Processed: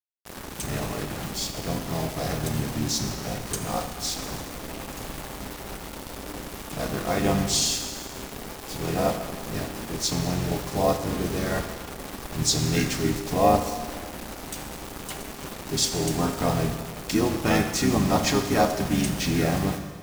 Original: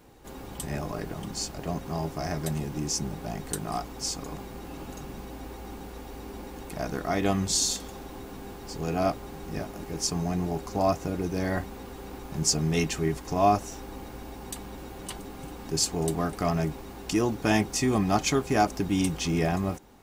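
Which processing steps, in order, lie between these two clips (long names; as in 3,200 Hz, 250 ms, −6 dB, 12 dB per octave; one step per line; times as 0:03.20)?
bit-depth reduction 6 bits, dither none
pitch-shifted copies added −5 semitones −3 dB
four-comb reverb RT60 1.6 s, combs from 27 ms, DRR 6.5 dB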